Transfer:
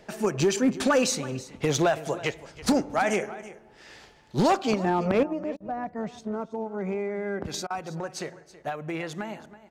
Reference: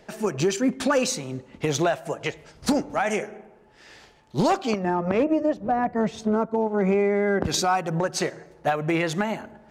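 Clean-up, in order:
clipped peaks rebuilt −15.5 dBFS
repair the gap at 0:05.57/0:07.67, 32 ms
echo removal 326 ms −17 dB
level correction +9 dB, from 0:05.23

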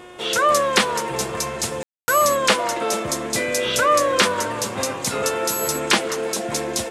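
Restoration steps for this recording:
hum removal 360.6 Hz, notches 10
ambience match 0:01.83–0:02.08

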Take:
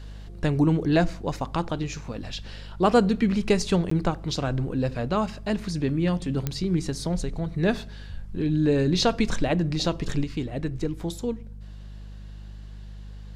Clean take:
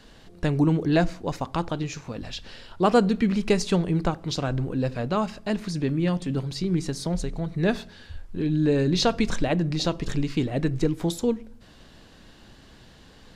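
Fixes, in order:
click removal
hum removal 50.5 Hz, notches 4
repair the gap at 0:03.90, 14 ms
level 0 dB, from 0:10.24 +5 dB

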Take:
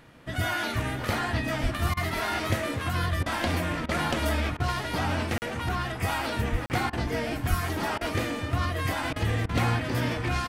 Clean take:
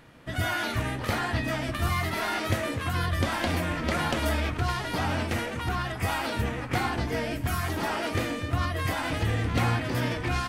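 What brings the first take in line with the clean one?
0:01.62–0:01.74: high-pass filter 140 Hz 24 dB per octave
0:06.51–0:06.63: high-pass filter 140 Hz 24 dB per octave
0:07.49–0:07.61: high-pass filter 140 Hz 24 dB per octave
repair the gap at 0:05.38/0:06.66, 39 ms
repair the gap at 0:01.94/0:03.23/0:03.86/0:04.57/0:06.90/0:07.98/0:09.13/0:09.46, 29 ms
echo removal 514 ms −14.5 dB

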